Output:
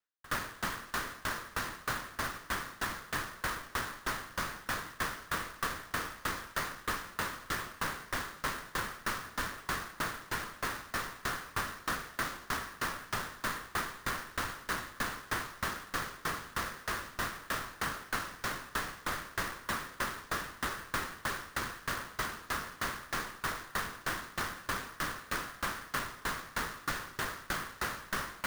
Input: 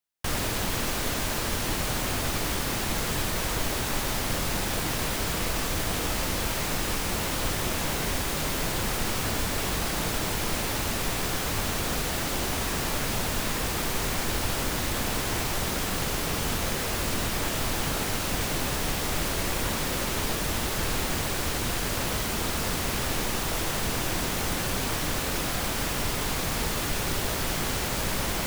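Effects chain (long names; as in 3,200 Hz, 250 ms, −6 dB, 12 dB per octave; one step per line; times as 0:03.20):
flat-topped bell 1,400 Hz +11.5 dB 1.1 octaves
bad sample-rate conversion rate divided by 4×, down none, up hold
low-shelf EQ 100 Hz −5.5 dB
tremolo with a ramp in dB decaying 3.2 Hz, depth 26 dB
level −5 dB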